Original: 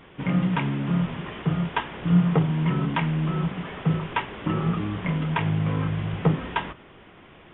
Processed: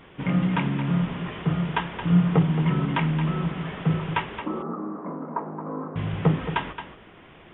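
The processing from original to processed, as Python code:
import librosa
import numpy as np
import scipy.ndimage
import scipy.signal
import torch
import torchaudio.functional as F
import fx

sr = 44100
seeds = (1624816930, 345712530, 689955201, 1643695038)

y = fx.ellip_bandpass(x, sr, low_hz=230.0, high_hz=1200.0, order=3, stop_db=50, at=(4.4, 5.96))
y = y + 10.0 ** (-10.0 / 20.0) * np.pad(y, (int(222 * sr / 1000.0), 0))[:len(y)]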